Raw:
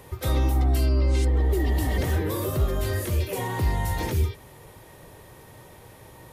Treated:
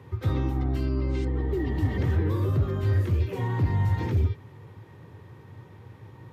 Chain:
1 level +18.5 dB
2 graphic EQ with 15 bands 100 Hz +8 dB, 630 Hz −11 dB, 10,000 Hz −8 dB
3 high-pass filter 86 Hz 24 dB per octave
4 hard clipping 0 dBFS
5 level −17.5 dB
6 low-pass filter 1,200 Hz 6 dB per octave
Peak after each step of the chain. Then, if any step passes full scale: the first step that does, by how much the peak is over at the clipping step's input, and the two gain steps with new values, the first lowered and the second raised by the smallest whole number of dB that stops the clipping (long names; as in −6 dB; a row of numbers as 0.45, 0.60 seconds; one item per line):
+4.5, +8.5, +6.0, 0.0, −17.5, −17.5 dBFS
step 1, 6.0 dB
step 1 +12.5 dB, step 5 −11.5 dB